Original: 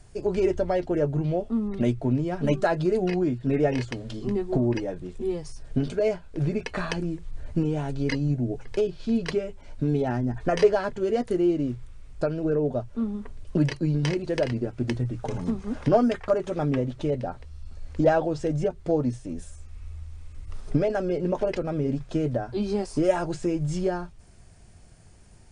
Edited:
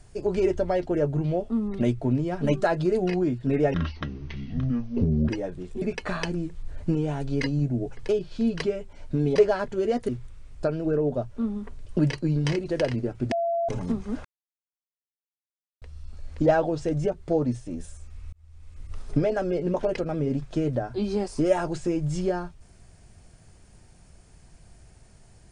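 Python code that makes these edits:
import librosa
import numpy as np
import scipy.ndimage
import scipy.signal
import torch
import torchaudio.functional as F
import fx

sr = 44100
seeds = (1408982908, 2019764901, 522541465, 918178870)

y = fx.edit(x, sr, fx.speed_span(start_s=3.74, length_s=0.99, speed=0.64),
    fx.cut(start_s=5.26, length_s=1.24),
    fx.cut(start_s=10.04, length_s=0.56),
    fx.cut(start_s=11.33, length_s=0.34),
    fx.bleep(start_s=14.9, length_s=0.37, hz=678.0, db=-22.5),
    fx.silence(start_s=15.83, length_s=1.57),
    fx.fade_in_span(start_s=19.91, length_s=0.54), tone=tone)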